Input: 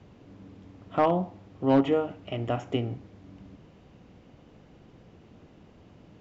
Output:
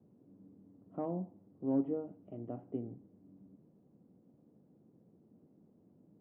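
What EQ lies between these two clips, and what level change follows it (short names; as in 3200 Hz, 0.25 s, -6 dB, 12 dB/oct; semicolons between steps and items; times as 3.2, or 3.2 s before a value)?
ladder band-pass 260 Hz, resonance 20%; +1.5 dB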